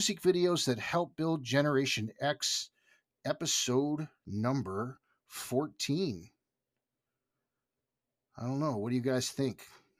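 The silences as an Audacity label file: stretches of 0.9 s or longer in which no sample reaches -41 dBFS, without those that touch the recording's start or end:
6.210000	8.380000	silence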